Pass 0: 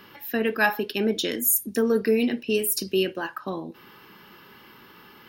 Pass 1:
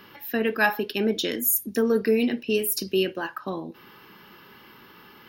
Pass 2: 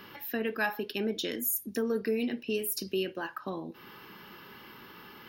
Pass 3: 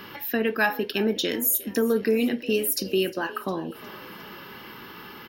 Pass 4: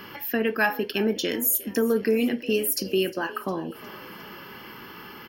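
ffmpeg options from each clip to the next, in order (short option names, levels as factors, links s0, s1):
-af "equalizer=f=8300:t=o:w=0.37:g=-7"
-af "acompressor=threshold=0.00794:ratio=1.5"
-filter_complex "[0:a]asplit=5[s0][s1][s2][s3][s4];[s1]adelay=357,afreqshift=44,volume=0.106[s5];[s2]adelay=714,afreqshift=88,volume=0.0582[s6];[s3]adelay=1071,afreqshift=132,volume=0.032[s7];[s4]adelay=1428,afreqshift=176,volume=0.0176[s8];[s0][s5][s6][s7][s8]amix=inputs=5:normalize=0,volume=2.37"
-af "asuperstop=centerf=3800:order=4:qfactor=7.8"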